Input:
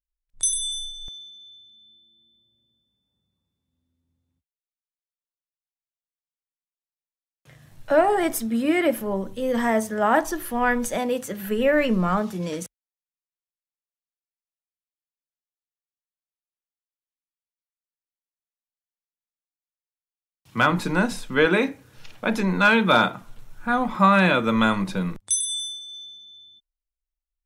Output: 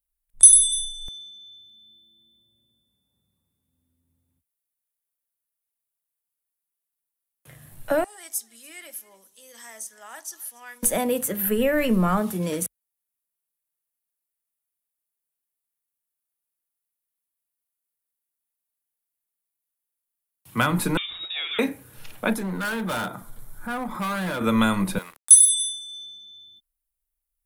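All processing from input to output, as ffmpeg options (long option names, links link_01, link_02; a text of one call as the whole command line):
ffmpeg -i in.wav -filter_complex "[0:a]asettb=1/sr,asplit=3[link_01][link_02][link_03];[link_01]atrim=end=8.044[link_04];[link_02]atrim=start=8.04:end=10.83,asetpts=PTS-STARTPTS,afade=type=in:duration=0.004:curve=qsin,afade=type=out:start_time=2.786:duration=0.004:curve=qsin,bandpass=frequency=6000:width_type=q:width=2.7,aecho=1:1:286:0.0841,atrim=end_sample=123039[link_05];[link_03]atrim=start=10.826[link_06];[link_04][link_05]acrossfade=duration=0.004:curve1=hsin:curve2=qsin[link_07];[link_07][link_06]acrossfade=duration=0.004:curve1=qsin:curve2=hsin,asettb=1/sr,asplit=3[link_08][link_09][link_10];[link_08]atrim=end=20.974[link_11];[link_09]atrim=start=20.97:end=21.59,asetpts=PTS-STARTPTS,afade=type=in:duration=0.004:curve=qsin,afade=type=out:start_time=0.616:duration=0.004:curve=qsin,acompressor=threshold=-30dB:ratio=4:attack=3.2:release=140:knee=1:detection=peak,lowpass=frequency=3200:width_type=q:width=0.5098,lowpass=frequency=3200:width_type=q:width=0.6013,lowpass=frequency=3200:width_type=q:width=0.9,lowpass=frequency=3200:width_type=q:width=2.563,afreqshift=-3800[link_12];[link_10]atrim=start=21.586[link_13];[link_11][link_12]acrossfade=duration=0.004:curve1=hsin:curve2=qsin[link_14];[link_14][link_13]acrossfade=duration=0.004:curve1=qsin:curve2=hsin,asettb=1/sr,asplit=3[link_15][link_16][link_17];[link_15]atrim=end=22.334[link_18];[link_16]atrim=start=22.33:end=24.41,asetpts=PTS-STARTPTS,afade=type=in:duration=0.004:curve=qsin,afade=type=out:start_time=2.076:duration=0.004:curve=qsin,equalizer=frequency=2700:width_type=o:width=0.26:gain=-14,asoftclip=type=hard:threshold=-19.5dB,acompressor=threshold=-34dB:ratio=2:attack=3.2:release=140:knee=1:detection=peak[link_19];[link_17]atrim=start=24.406[link_20];[link_18][link_19]acrossfade=duration=0.004:curve1=hsin:curve2=qsin[link_21];[link_21][link_20]acrossfade=duration=0.004:curve1=qsin:curve2=hsin,asettb=1/sr,asplit=3[link_22][link_23][link_24];[link_22]atrim=end=24.984[link_25];[link_23]atrim=start=24.98:end=25.49,asetpts=PTS-STARTPTS,afade=type=in:duration=0.004:curve=qsin,afade=type=out:start_time=0.506:duration=0.004:curve=qsin,highpass=710,aeval=exprs='sgn(val(0))*max(abs(val(0))-0.00473,0)':channel_layout=same[link_26];[link_24]atrim=start=25.486[link_27];[link_25][link_26]acrossfade=duration=0.004:curve1=hsin:curve2=qsin[link_28];[link_28][link_27]acrossfade=duration=0.004:curve1=qsin:curve2=hsin,highshelf=frequency=8000:width_type=q:width=1.5:gain=10.5,acrossover=split=220|3000[link_29][link_30][link_31];[link_30]acompressor=threshold=-22dB:ratio=6[link_32];[link_29][link_32][link_31]amix=inputs=3:normalize=0,volume=2dB" out.wav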